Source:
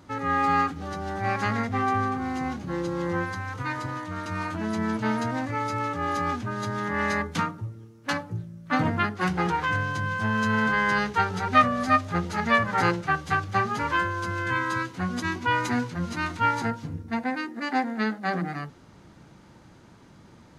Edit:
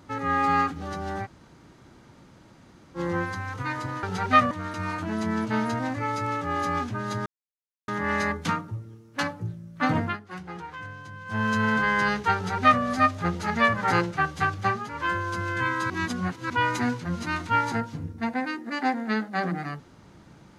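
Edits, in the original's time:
0:01.24–0:02.97: fill with room tone, crossfade 0.06 s
0:06.78: splice in silence 0.62 s
0:08.92–0:10.31: duck −13 dB, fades 0.16 s
0:11.25–0:11.73: duplicate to 0:04.03
0:13.55–0:14.07: duck −10 dB, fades 0.26 s
0:14.80–0:15.40: reverse

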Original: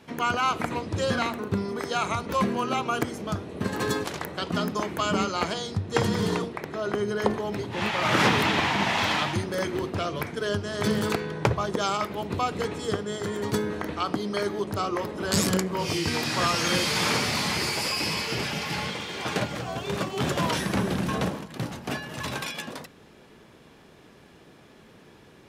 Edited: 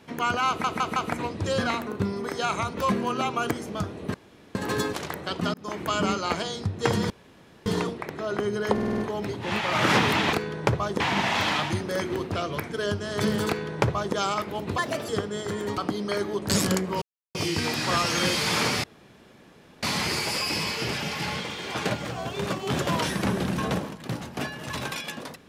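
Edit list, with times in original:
0:00.48: stutter 0.16 s, 4 plays
0:03.66: splice in room tone 0.41 s
0:04.65–0:04.93: fade in
0:06.21: splice in room tone 0.56 s
0:07.28: stutter 0.05 s, 6 plays
0:11.11–0:11.78: duplicate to 0:08.63
0:12.41–0:12.84: play speed 140%
0:13.53–0:14.03: remove
0:14.75–0:15.32: remove
0:15.84: splice in silence 0.33 s
0:17.33: splice in room tone 0.99 s

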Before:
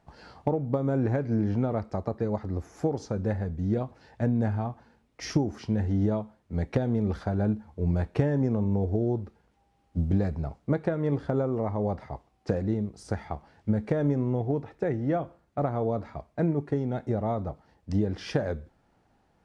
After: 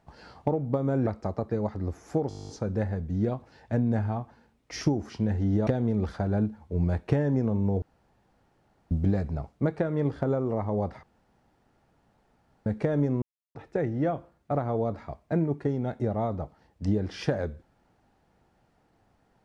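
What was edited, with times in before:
0:01.07–0:01.76: remove
0:02.98: stutter 0.02 s, 11 plays
0:06.16–0:06.74: remove
0:08.89–0:09.98: fill with room tone
0:12.10–0:13.73: fill with room tone
0:14.29–0:14.62: silence

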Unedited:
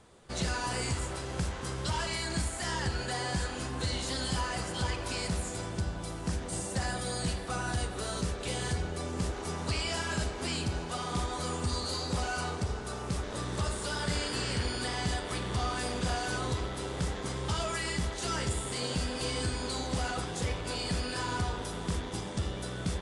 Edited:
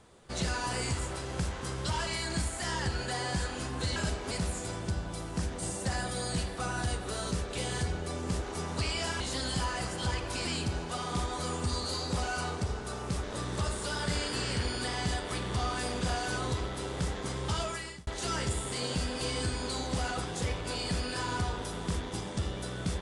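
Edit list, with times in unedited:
0:03.96–0:05.21: swap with 0:10.10–0:10.45
0:17.60–0:18.07: fade out

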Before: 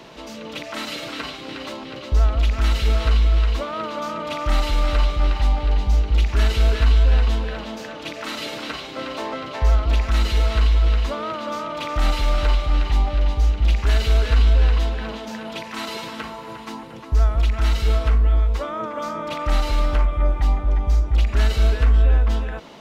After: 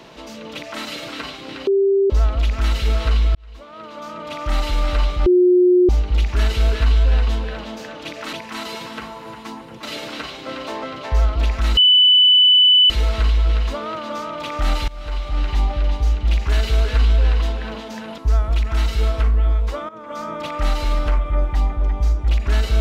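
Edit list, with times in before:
0:01.67–0:02.10: beep over 393 Hz −12.5 dBFS
0:03.35–0:04.68: fade in
0:05.26–0:05.89: beep over 360 Hz −9.5 dBFS
0:10.27: insert tone 2,990 Hz −8.5 dBFS 1.13 s
0:12.25–0:12.90: fade in, from −22 dB
0:15.55–0:17.05: move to 0:08.33
0:18.76–0:19.13: fade in, from −16.5 dB

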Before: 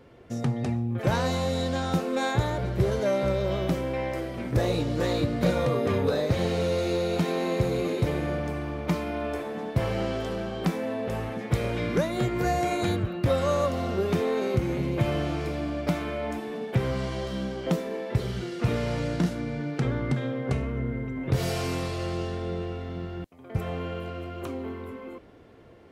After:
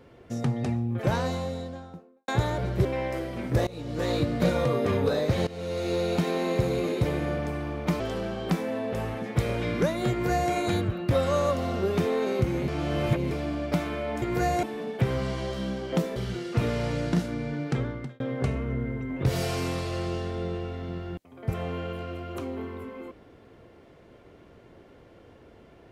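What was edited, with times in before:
0:00.85–0:02.28: fade out and dull
0:02.85–0:03.86: remove
0:04.68–0:05.15: fade in, from −22.5 dB
0:06.48–0:07.00: fade in, from −17 dB
0:09.01–0:10.15: remove
0:12.26–0:12.67: duplicate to 0:16.37
0:14.83–0:15.46: reverse
0:17.90–0:18.23: remove
0:19.78–0:20.27: fade out

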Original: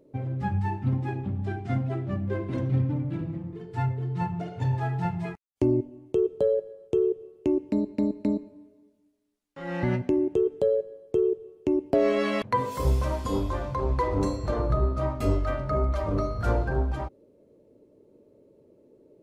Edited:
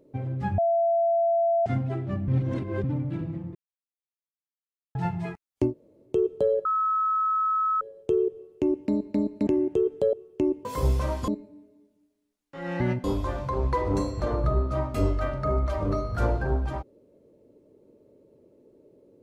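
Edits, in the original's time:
0:00.58–0:01.66: beep over 675 Hz −19.5 dBFS
0:02.28–0:02.84: reverse
0:03.55–0:04.95: silence
0:05.69–0:06.09: fill with room tone, crossfade 0.10 s
0:06.65: insert tone 1,290 Hz −21.5 dBFS 1.16 s
0:08.31–0:10.07: move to 0:13.30
0:10.73–0:11.40: remove
0:11.92–0:12.67: remove

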